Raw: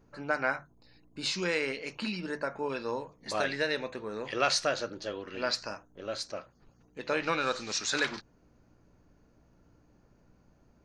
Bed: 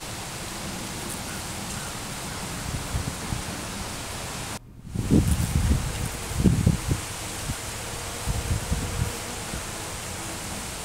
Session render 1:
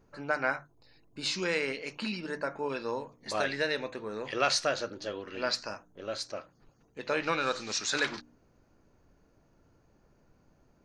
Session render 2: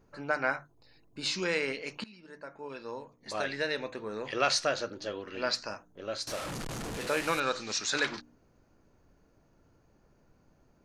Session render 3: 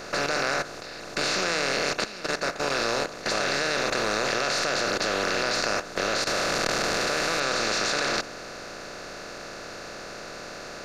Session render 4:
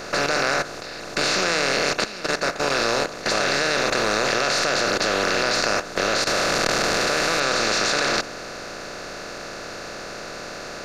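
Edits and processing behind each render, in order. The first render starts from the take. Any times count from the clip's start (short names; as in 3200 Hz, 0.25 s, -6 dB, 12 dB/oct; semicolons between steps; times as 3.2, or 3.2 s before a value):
de-hum 60 Hz, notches 5
2.04–4.03 fade in, from -21 dB; 6.27–7.4 delta modulation 64 kbps, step -31.5 dBFS
per-bin compression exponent 0.2; level quantiser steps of 13 dB
gain +4.5 dB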